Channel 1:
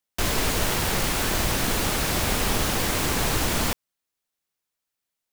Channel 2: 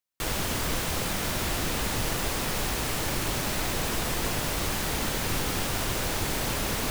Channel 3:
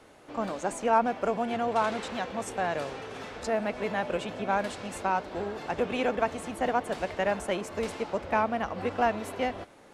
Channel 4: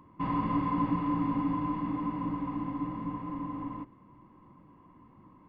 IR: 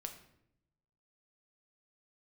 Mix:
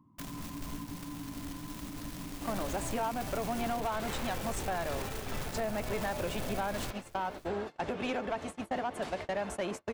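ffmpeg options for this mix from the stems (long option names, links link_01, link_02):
-filter_complex "[0:a]acrusher=bits=4:dc=4:mix=0:aa=0.000001,volume=-17.5dB[link_01];[1:a]bass=frequency=250:gain=14,treble=frequency=4000:gain=2,alimiter=limit=-16dB:level=0:latency=1:release=43,aeval=exprs='0.158*(cos(1*acos(clip(val(0)/0.158,-1,1)))-cos(1*PI/2))+0.0398*(cos(7*acos(clip(val(0)/0.158,-1,1)))-cos(7*PI/2))+0.0355*(cos(8*acos(clip(val(0)/0.158,-1,1)))-cos(8*PI/2))':channel_layout=same,volume=-15dB,asplit=2[link_02][link_03];[link_03]volume=-20.5dB[link_04];[2:a]adelay=2100,volume=1dB[link_05];[3:a]equalizer=frequency=125:width_type=o:width=1:gain=10,equalizer=frequency=250:width_type=o:width=1:gain=11,equalizer=frequency=500:width_type=o:width=1:gain=-8,equalizer=frequency=1000:width_type=o:width=1:gain=5,equalizer=frequency=2000:width_type=o:width=1:gain=-7,volume=-14.5dB[link_06];[link_01][link_06]amix=inputs=2:normalize=0,acompressor=threshold=-40dB:ratio=4,volume=0dB[link_07];[link_02][link_05]amix=inputs=2:normalize=0,agate=range=-40dB:threshold=-34dB:ratio=16:detection=peak,acompressor=threshold=-27dB:ratio=6,volume=0dB[link_08];[link_04]aecho=0:1:569:1[link_09];[link_07][link_08][link_09]amix=inputs=3:normalize=0,bandreject=frequency=480:width=12,asoftclip=type=tanh:threshold=-25.5dB"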